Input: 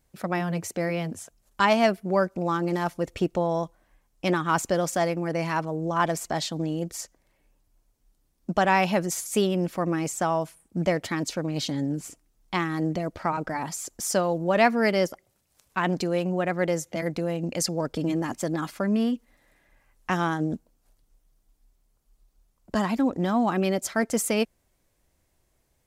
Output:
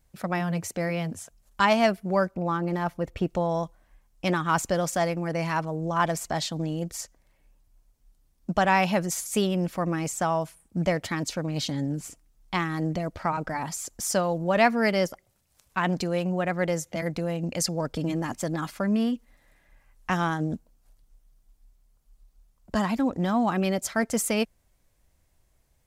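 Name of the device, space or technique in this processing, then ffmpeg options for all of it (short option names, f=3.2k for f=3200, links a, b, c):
low shelf boost with a cut just above: -filter_complex "[0:a]asettb=1/sr,asplit=3[a][b][c];[a]atrim=end=2.314[d];[b]atrim=start=2.31:end=3.27,asetpts=PTS-STARTPTS,afade=t=in:d=0.004:c=qsin,afade=t=out:st=0.956:d=0.004:c=qsin,equalizer=f=7.7k:t=o:w=2.2:g=-9.5[e];[c]atrim=start=3.266[f];[d][e]acrossfade=d=0.004:c1=hsin:c2=qsin[g];[g][f]acrossfade=d=0.004:c1=qsin:c2=hsin,lowshelf=f=89:g=6.5,equalizer=f=350:t=o:w=0.92:g=-4"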